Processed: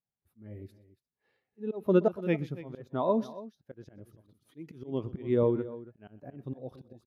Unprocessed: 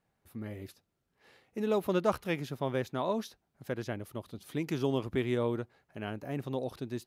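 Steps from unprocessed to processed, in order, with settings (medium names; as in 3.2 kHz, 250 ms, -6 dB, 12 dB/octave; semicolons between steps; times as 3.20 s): slow attack 205 ms; multi-tap echo 124/282 ms -15/-11 dB; spectral contrast expander 1.5:1; trim +6 dB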